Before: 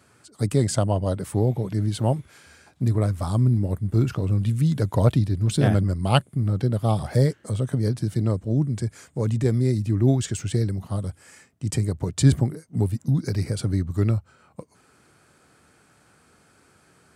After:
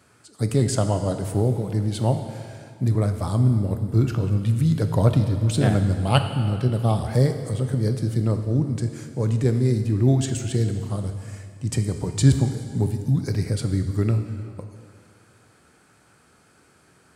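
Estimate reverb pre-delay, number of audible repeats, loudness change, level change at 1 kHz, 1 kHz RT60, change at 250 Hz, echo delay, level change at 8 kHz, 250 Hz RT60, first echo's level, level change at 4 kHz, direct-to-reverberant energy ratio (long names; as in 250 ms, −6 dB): 6 ms, no echo audible, +1.0 dB, +0.5 dB, 2.2 s, +1.0 dB, no echo audible, +0.5 dB, 2.2 s, no echo audible, +1.0 dB, 7.0 dB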